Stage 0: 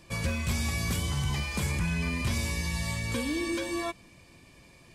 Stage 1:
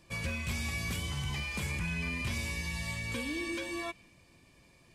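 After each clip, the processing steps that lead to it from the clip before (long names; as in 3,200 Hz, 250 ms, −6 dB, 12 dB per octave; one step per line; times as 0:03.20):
dynamic equaliser 2,500 Hz, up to +6 dB, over −53 dBFS, Q 1.5
level −6.5 dB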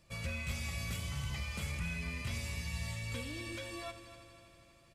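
notch filter 750 Hz, Q 12
comb filter 1.5 ms, depth 41%
echo machine with several playback heads 81 ms, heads first and third, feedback 71%, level −14 dB
level −5 dB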